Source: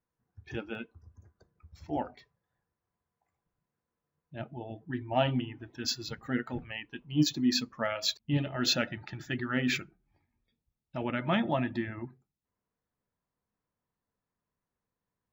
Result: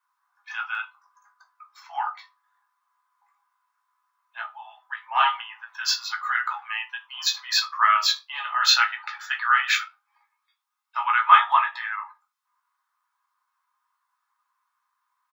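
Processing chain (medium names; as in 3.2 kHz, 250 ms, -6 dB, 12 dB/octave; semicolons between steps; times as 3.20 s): steep high-pass 810 Hz 72 dB/octave; peaking EQ 1.2 kHz +15 dB 0.71 oct; doubling 17 ms -8 dB; reverberation RT60 0.25 s, pre-delay 4 ms, DRR 3 dB; endings held to a fixed fall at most 340 dB/s; trim +5.5 dB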